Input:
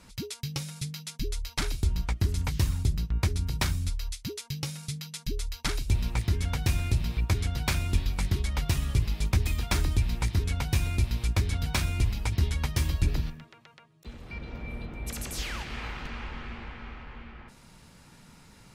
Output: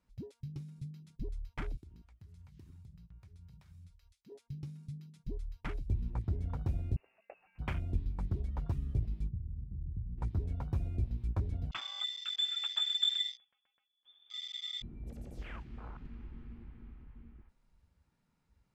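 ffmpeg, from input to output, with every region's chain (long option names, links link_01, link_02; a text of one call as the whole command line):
ffmpeg -i in.wav -filter_complex "[0:a]asettb=1/sr,asplit=3[link_01][link_02][link_03];[link_01]atrim=end=1.774[link_04];[link_02]atrim=start=1.77:end=4.32,asetpts=PTS-STARTPTS,afade=type=in:duration=0.004:curve=qsin,afade=type=out:start_time=2.546:duration=0.004:curve=qsin,highpass=79,lowshelf=frequency=360:gain=-11.5,acompressor=threshold=-40dB:ratio=4:attack=3.2:release=140:knee=1:detection=peak[link_05];[link_03]atrim=start=4.316[link_06];[link_04][link_05]acrossfade=duration=0.004:curve1=hsin:curve2=qsin[link_07];[link_07][link_06]acrossfade=duration=0.004:curve1=qsin:curve2=hsin,asettb=1/sr,asplit=3[link_08][link_09][link_10];[link_08]atrim=end=6.964[link_11];[link_09]atrim=start=6.96:end=7.59,asetpts=PTS-STARTPTS,afade=type=in:duration=0.004:curve=qsin,afade=type=out:start_time=0.626:duration=0.004:curve=qsin,highpass=frequency=280:width=0.5412,highpass=frequency=280:width=1.3066,lowpass=frequency=2600:width_type=q:width=0.5098,lowpass=frequency=2600:width_type=q:width=0.6013,lowpass=frequency=2600:width_type=q:width=0.9,lowpass=frequency=2600:width_type=q:width=2.563,afreqshift=-3000[link_12];[link_10]atrim=start=7.586[link_13];[link_11][link_12]acrossfade=duration=0.004:curve1=hsin:curve2=qsin[link_14];[link_14][link_13]acrossfade=duration=0.004:curve1=qsin:curve2=hsin,asettb=1/sr,asplit=3[link_15][link_16][link_17];[link_15]atrim=end=9.284[link_18];[link_16]atrim=start=9.28:end=10.18,asetpts=PTS-STARTPTS,afade=type=in:duration=0.004:curve=qsin,afade=type=out:start_time=0.896:duration=0.004:curve=qsin,acompressor=threshold=-32dB:ratio=3:attack=3.2:release=140:knee=1:detection=peak,lowpass=frequency=150:width_type=q:width=1.7[link_19];[link_17]atrim=start=10.176[link_20];[link_18][link_19]acrossfade=duration=0.004:curve1=hsin:curve2=qsin[link_21];[link_21][link_20]acrossfade=duration=0.004:curve1=qsin:curve2=hsin,asettb=1/sr,asplit=3[link_22][link_23][link_24];[link_22]atrim=end=11.714[link_25];[link_23]atrim=start=11.71:end=14.82,asetpts=PTS-STARTPTS,afade=type=in:duration=0.004:curve=qsin,afade=type=out:start_time=3.106:duration=0.004:curve=qsin,highpass=frequency=110:poles=1,asubboost=boost=9:cutoff=200,lowpass=frequency=3100:width_type=q:width=0.5098,lowpass=frequency=3100:width_type=q:width=0.6013,lowpass=frequency=3100:width_type=q:width=0.9,lowpass=frequency=3100:width_type=q:width=2.563,afreqshift=-3600[link_26];[link_24]atrim=start=14.816[link_27];[link_25][link_26]acrossfade=duration=0.004:curve1=hsin:curve2=qsin[link_28];[link_28][link_27]acrossfade=duration=0.004:curve1=qsin:curve2=hsin,highshelf=frequency=2800:gain=-8.5,afwtdn=0.0141,volume=-7.5dB" out.wav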